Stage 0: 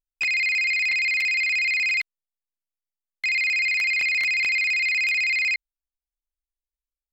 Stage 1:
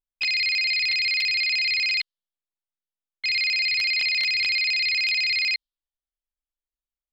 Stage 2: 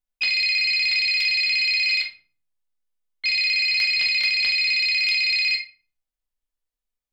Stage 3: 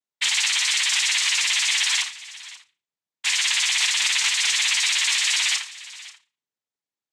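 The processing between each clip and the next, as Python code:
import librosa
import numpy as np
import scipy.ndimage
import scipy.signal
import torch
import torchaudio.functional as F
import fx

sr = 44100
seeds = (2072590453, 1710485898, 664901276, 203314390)

y1 = fx.env_lowpass(x, sr, base_hz=1700.0, full_db=-20.5)
y1 = fx.band_shelf(y1, sr, hz=3900.0, db=13.0, octaves=1.0)
y1 = y1 * 10.0 ** (-4.0 / 20.0)
y2 = fx.room_shoebox(y1, sr, seeds[0], volume_m3=320.0, walls='furnished', distance_m=1.9)
y3 = fx.noise_vocoder(y2, sr, seeds[1], bands=6)
y3 = y3 + 10.0 ** (-18.0 / 20.0) * np.pad(y3, (int(535 * sr / 1000.0), 0))[:len(y3)]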